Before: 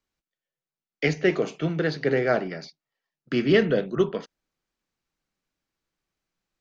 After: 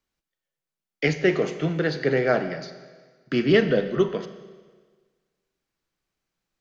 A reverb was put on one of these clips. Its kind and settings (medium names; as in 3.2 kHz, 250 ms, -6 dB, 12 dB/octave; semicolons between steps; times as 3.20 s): Schroeder reverb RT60 1.5 s, combs from 30 ms, DRR 10.5 dB; trim +1 dB